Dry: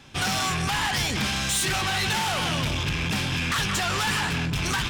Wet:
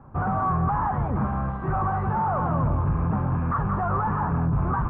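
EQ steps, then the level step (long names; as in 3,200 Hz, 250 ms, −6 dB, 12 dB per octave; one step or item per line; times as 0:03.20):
Chebyshev low-pass filter 1,200 Hz, order 4
high-frequency loss of the air 160 metres
parametric band 340 Hz −7 dB 1.5 octaves
+7.5 dB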